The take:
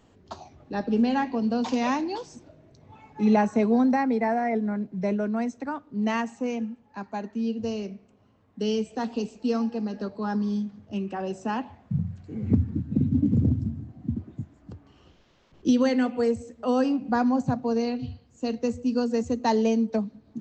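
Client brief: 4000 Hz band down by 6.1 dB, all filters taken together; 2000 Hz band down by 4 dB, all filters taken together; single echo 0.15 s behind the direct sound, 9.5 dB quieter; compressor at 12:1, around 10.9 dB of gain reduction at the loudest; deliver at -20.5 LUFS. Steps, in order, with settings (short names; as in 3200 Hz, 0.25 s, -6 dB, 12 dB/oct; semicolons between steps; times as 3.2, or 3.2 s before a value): bell 2000 Hz -3.5 dB; bell 4000 Hz -7 dB; compressor 12:1, threshold -28 dBFS; echo 0.15 s -9.5 dB; gain +13 dB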